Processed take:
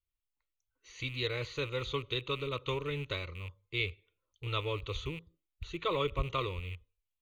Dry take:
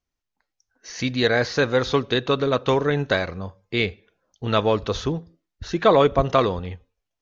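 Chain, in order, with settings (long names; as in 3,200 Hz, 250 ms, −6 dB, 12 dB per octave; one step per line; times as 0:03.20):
loose part that buzzes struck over −31 dBFS, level −26 dBFS
parametric band 630 Hz −13 dB 2.6 octaves
phaser with its sweep stopped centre 1,100 Hz, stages 8
level −4 dB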